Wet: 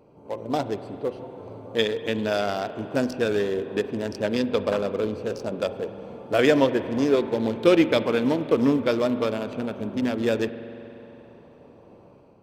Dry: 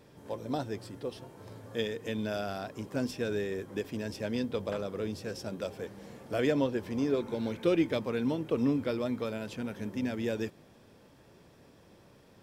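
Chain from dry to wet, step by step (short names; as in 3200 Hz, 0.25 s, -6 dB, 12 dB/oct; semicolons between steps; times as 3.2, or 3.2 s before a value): Wiener smoothing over 25 samples; low shelf 300 Hz -11 dB; spring tank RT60 3.3 s, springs 44 ms, chirp 30 ms, DRR 12 dB; AGC gain up to 5 dB; gain +8.5 dB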